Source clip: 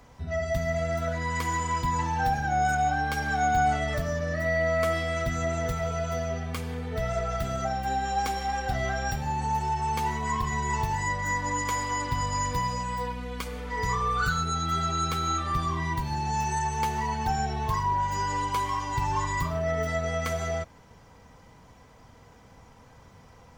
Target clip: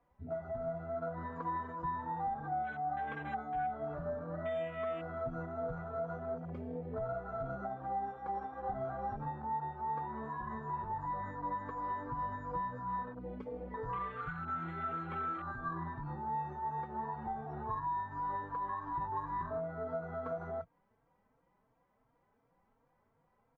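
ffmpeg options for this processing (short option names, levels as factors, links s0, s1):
-filter_complex "[0:a]lowpass=1600,afwtdn=0.0282,equalizer=f=67:w=0.84:g=-14,acompressor=threshold=0.02:ratio=6,asplit=2[s0][s1];[s1]adelay=3.8,afreqshift=2.8[s2];[s0][s2]amix=inputs=2:normalize=1,volume=1.12"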